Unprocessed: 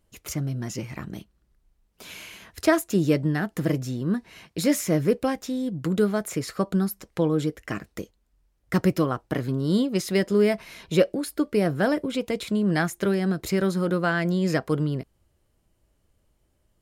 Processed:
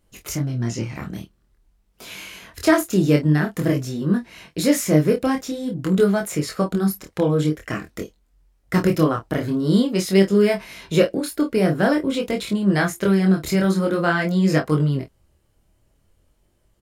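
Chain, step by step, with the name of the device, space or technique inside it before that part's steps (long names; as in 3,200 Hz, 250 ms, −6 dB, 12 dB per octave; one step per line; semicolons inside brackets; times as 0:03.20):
double-tracked vocal (double-tracking delay 26 ms −9 dB; chorus effect 0.48 Hz, delay 20 ms, depth 7.4 ms)
0:00.42–0:00.95: low-pass filter 7,400 Hz 12 dB per octave
level +7 dB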